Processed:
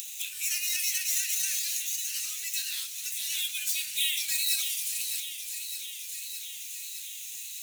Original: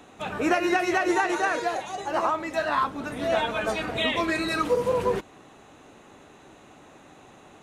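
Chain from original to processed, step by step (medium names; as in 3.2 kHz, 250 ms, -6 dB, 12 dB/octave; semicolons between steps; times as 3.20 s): median filter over 5 samples; elliptic band-stop 130–2400 Hz, stop band 70 dB; differentiator; hum notches 50/100/150/200 Hz; feedback echo behind a high-pass 611 ms, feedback 58%, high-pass 1.9 kHz, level -11 dB; in parallel at +1 dB: peak limiter -34.5 dBFS, peak gain reduction 11 dB; on the sum: upward compressor, threshold -40 dBFS; tone controls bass 0 dB, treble +14 dB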